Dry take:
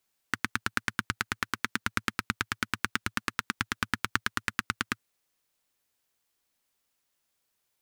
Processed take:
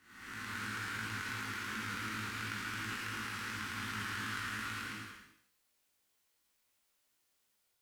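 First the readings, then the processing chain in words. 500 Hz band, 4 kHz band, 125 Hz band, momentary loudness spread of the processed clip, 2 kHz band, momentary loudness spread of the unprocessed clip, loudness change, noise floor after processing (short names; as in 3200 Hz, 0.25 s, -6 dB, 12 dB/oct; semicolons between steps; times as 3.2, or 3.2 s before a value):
-7.0 dB, -7.0 dB, -4.0 dB, 5 LU, -7.0 dB, 3 LU, -7.0 dB, -78 dBFS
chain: time blur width 0.404 s; non-linear reverb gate 0.13 s flat, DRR -2.5 dB; chorus 2.8 Hz, delay 18.5 ms, depth 2.5 ms; gain +1 dB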